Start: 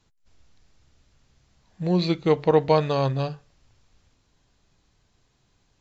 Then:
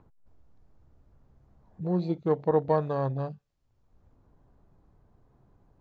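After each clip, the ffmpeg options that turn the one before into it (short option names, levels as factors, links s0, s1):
-filter_complex "[0:a]afwtdn=0.0282,acrossover=split=1200[s0][s1];[s0]acompressor=mode=upward:threshold=0.0224:ratio=2.5[s2];[s2][s1]amix=inputs=2:normalize=0,volume=0.531"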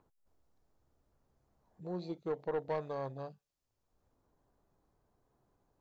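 -af "bass=f=250:g=-9,treble=f=4000:g=8,asoftclip=type=tanh:threshold=0.1,volume=0.422"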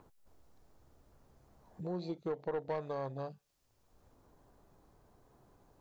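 -af "acompressor=threshold=0.002:ratio=2,volume=3.35"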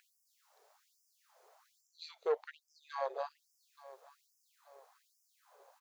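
-af "aecho=1:1:877|1754|2631:0.112|0.0438|0.0171,afftfilt=real='re*gte(b*sr/1024,380*pow(5000/380,0.5+0.5*sin(2*PI*1.2*pts/sr)))':imag='im*gte(b*sr/1024,380*pow(5000/380,0.5+0.5*sin(2*PI*1.2*pts/sr)))':win_size=1024:overlap=0.75,volume=2"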